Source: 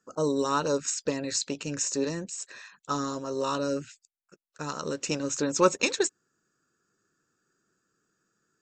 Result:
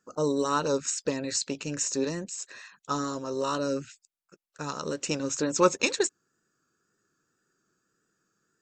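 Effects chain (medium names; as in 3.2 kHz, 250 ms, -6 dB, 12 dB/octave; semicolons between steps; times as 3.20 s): wow and flutter 39 cents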